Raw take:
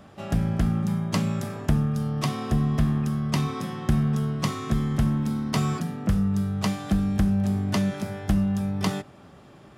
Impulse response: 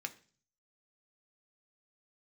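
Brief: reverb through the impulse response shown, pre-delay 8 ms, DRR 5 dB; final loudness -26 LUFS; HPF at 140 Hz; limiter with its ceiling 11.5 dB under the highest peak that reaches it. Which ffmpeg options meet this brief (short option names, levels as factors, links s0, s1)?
-filter_complex "[0:a]highpass=140,alimiter=limit=0.0891:level=0:latency=1,asplit=2[s0][s1];[1:a]atrim=start_sample=2205,adelay=8[s2];[s1][s2]afir=irnorm=-1:irlink=0,volume=0.596[s3];[s0][s3]amix=inputs=2:normalize=0,volume=1.58"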